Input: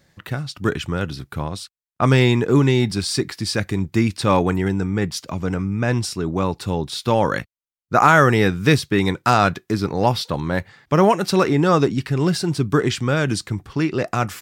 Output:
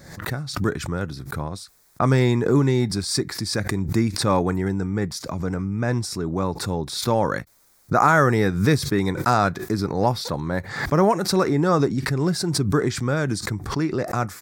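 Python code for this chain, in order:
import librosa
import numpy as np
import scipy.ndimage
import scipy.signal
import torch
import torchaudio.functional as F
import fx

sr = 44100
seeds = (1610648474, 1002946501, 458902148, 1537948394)

y = fx.peak_eq(x, sr, hz=2900.0, db=-14.0, octaves=0.5)
y = fx.pre_swell(y, sr, db_per_s=73.0)
y = F.gain(torch.from_numpy(y), -3.0).numpy()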